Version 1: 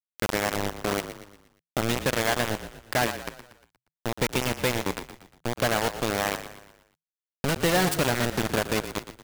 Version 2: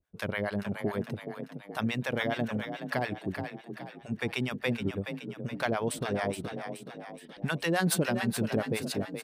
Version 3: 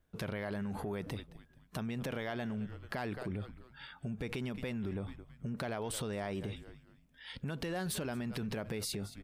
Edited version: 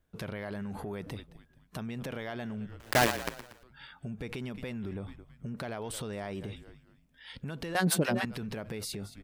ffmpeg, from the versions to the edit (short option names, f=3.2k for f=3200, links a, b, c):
-filter_complex "[2:a]asplit=3[a][b][c];[a]atrim=end=2.802[d];[0:a]atrim=start=2.798:end=3.632[e];[b]atrim=start=3.628:end=7.752[f];[1:a]atrim=start=7.748:end=8.252[g];[c]atrim=start=8.248[h];[d][e]acrossfade=d=0.004:c1=hsin:c2=hsin[i];[i][f]acrossfade=d=0.004:c1=hsin:c2=hsin[j];[j][g]acrossfade=d=0.004:c1=hsin:c2=hsin[k];[k][h]acrossfade=d=0.004:c1=hsin:c2=hsin"